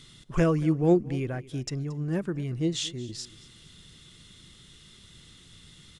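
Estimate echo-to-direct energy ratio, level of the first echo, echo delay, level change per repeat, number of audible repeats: -19.5 dB, -20.0 dB, 0.227 s, -9.5 dB, 2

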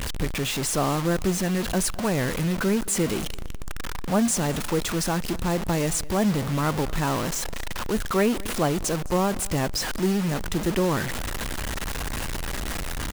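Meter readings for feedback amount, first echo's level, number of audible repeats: 29%, -22.0 dB, 2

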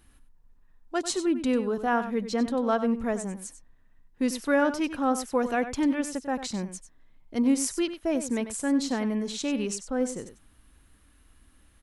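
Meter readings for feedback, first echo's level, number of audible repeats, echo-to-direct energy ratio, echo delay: no steady repeat, -11.5 dB, 1, -11.5 dB, 95 ms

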